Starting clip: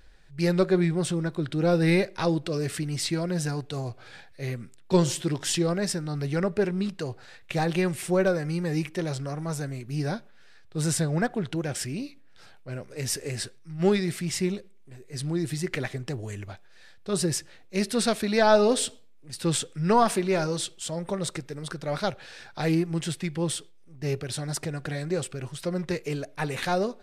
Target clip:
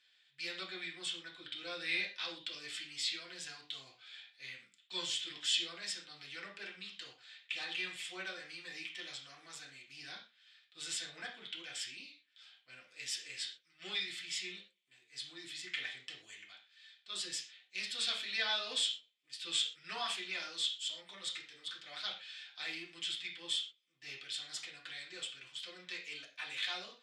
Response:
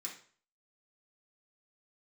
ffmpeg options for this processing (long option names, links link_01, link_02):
-filter_complex "[0:a]bandpass=frequency=3200:width_type=q:width=5.2:csg=0[link_01];[1:a]atrim=start_sample=2205,afade=type=out:start_time=0.18:duration=0.01,atrim=end_sample=8379[link_02];[link_01][link_02]afir=irnorm=-1:irlink=0,volume=8.5dB"